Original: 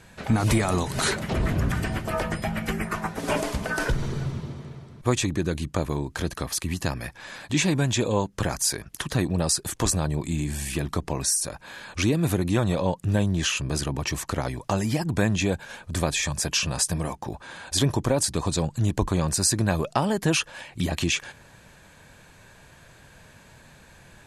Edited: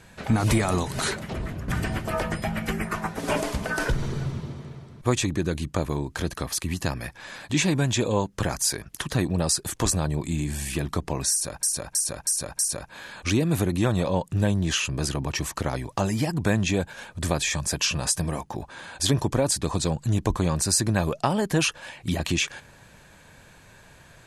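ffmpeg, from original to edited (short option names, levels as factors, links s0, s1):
-filter_complex "[0:a]asplit=6[s0][s1][s2][s3][s4][s5];[s0]atrim=end=1.68,asetpts=PTS-STARTPTS,afade=t=out:st=0.74:d=0.94:silence=0.251189[s6];[s1]atrim=start=1.68:end=11.632,asetpts=PTS-STARTPTS,afade=t=in:d=0.004:c=hsin:silence=0.251189[s7];[s2]atrim=start=11.308:end=11.632[s8];[s3]atrim=start=11.308:end=11.632[s9];[s4]atrim=start=11.308:end=11.632[s10];[s5]atrim=start=11.308[s11];[s6][s7]concat=n=2:v=0:a=1[s12];[s12][s8]acrossfade=d=0.004:c1=hsin:c2=hsin[s13];[s13][s9]acrossfade=d=0.004:c1=hsin:c2=hsin[s14];[s14][s10]acrossfade=d=0.004:c1=hsin:c2=hsin[s15];[s15][s11]acrossfade=d=0.004:c1=hsin:c2=hsin"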